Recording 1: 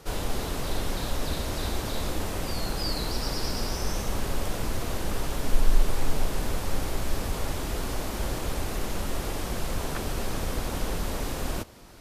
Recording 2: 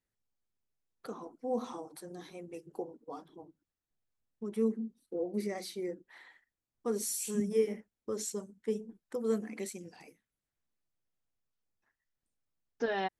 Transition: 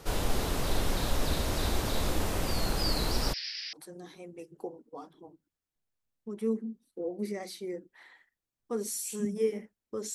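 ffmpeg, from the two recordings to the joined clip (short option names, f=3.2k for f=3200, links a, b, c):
-filter_complex "[0:a]asplit=3[a][b][c];[a]afade=t=out:st=3.32:d=0.02[d];[b]asuperpass=centerf=3100:order=12:qfactor=0.87,afade=t=in:st=3.32:d=0.02,afade=t=out:st=3.73:d=0.02[e];[c]afade=t=in:st=3.73:d=0.02[f];[d][e][f]amix=inputs=3:normalize=0,apad=whole_dur=10.14,atrim=end=10.14,atrim=end=3.732[g];[1:a]atrim=start=1.878:end=8.29[h];[g][h]acrossfade=d=0.004:c1=hsin:c2=hsin"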